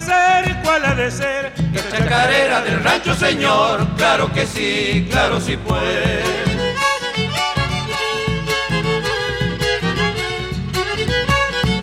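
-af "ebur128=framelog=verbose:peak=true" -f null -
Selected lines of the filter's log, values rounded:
Integrated loudness:
  I:         -17.1 LUFS
  Threshold: -27.1 LUFS
Loudness range:
  LRA:         3.5 LU
  Threshold: -37.2 LUFS
  LRA low:   -19.0 LUFS
  LRA high:  -15.5 LUFS
True peak:
  Peak:       -4.3 dBFS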